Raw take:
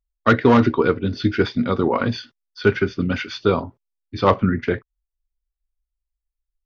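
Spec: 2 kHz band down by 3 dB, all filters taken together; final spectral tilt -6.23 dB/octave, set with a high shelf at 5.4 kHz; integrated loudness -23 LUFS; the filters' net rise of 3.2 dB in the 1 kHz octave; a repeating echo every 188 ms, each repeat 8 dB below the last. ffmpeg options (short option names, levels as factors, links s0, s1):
-af "equalizer=f=1000:t=o:g=6.5,equalizer=f=2000:t=o:g=-8.5,highshelf=f=5400:g=-4,aecho=1:1:188|376|564|752|940:0.398|0.159|0.0637|0.0255|0.0102,volume=0.631"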